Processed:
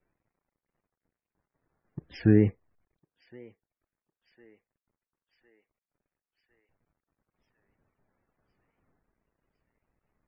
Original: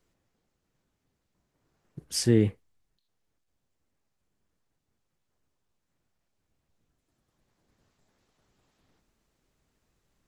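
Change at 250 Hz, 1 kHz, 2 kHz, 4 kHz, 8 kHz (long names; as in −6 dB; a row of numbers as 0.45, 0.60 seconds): +2.0 dB, can't be measured, +2.0 dB, below −15 dB, below −35 dB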